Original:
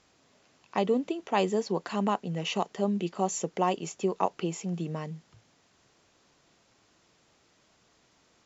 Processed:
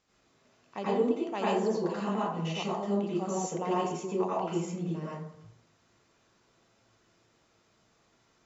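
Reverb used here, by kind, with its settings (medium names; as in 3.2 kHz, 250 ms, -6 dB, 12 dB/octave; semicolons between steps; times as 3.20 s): plate-style reverb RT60 0.71 s, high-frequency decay 0.45×, pre-delay 75 ms, DRR -8 dB; trim -10.5 dB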